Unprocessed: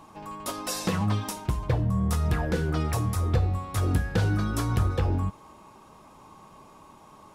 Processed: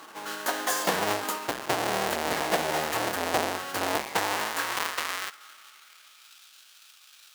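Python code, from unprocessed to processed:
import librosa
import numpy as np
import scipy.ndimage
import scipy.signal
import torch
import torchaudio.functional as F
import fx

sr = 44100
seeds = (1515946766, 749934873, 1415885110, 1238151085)

y = fx.halfwave_hold(x, sr)
y = fx.filter_sweep_highpass(y, sr, from_hz=430.0, to_hz=2500.0, start_s=3.8, end_s=6.42, q=1.1)
y = fx.formant_shift(y, sr, semitones=4)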